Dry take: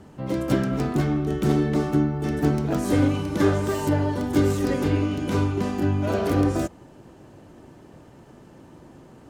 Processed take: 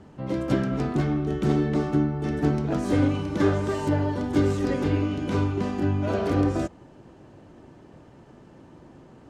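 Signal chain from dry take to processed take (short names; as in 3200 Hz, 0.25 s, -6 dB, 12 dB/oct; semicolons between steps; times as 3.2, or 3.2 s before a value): air absorption 59 m; gain -1.5 dB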